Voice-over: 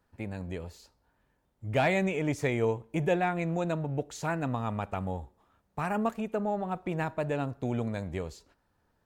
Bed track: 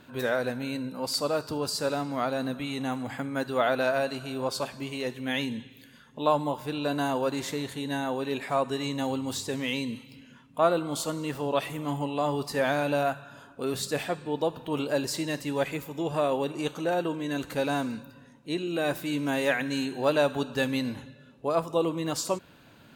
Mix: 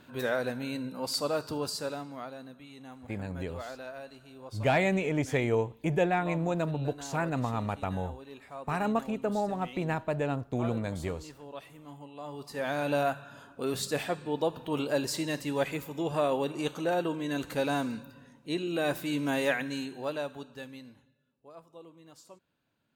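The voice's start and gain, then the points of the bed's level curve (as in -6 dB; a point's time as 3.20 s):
2.90 s, +0.5 dB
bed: 1.61 s -2.5 dB
2.50 s -16.5 dB
12.13 s -16.5 dB
12.93 s -1.5 dB
19.43 s -1.5 dB
21.26 s -24 dB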